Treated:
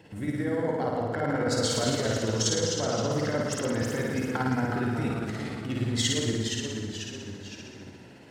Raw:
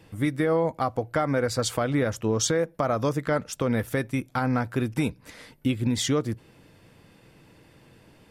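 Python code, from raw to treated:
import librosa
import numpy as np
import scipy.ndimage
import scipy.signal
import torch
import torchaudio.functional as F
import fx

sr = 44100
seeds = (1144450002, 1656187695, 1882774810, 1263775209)

y = fx.peak_eq(x, sr, hz=12000.0, db=-13.5, octaves=0.54)
y = fx.over_compress(y, sr, threshold_db=-28.0, ratio=-1.0)
y = fx.notch_comb(y, sr, f0_hz=1200.0)
y = fx.room_flutter(y, sr, wall_m=9.2, rt60_s=1.3)
y = y * (1.0 - 0.43 / 2.0 + 0.43 / 2.0 * np.cos(2.0 * np.pi * 17.0 * (np.arange(len(y)) / sr)))
y = fx.echo_pitch(y, sr, ms=109, semitones=-1, count=3, db_per_echo=-6.0)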